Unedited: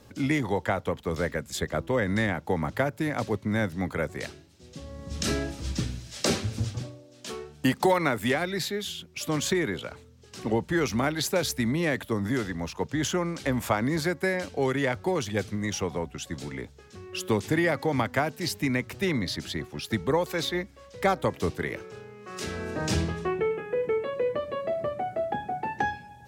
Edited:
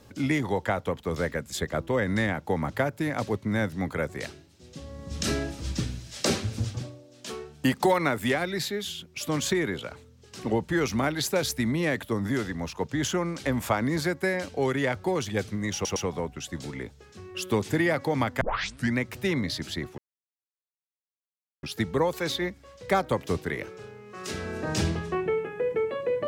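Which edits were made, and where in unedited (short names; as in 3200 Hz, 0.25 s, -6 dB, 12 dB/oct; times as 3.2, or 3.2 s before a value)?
15.74 stutter 0.11 s, 3 plays
18.19 tape start 0.55 s
19.76 insert silence 1.65 s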